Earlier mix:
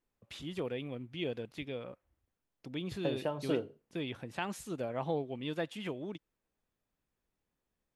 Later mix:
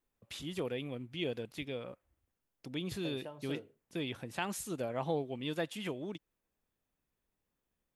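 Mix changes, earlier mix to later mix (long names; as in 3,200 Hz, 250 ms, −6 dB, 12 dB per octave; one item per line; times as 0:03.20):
second voice −11.5 dB
master: add high-shelf EQ 6,400 Hz +10.5 dB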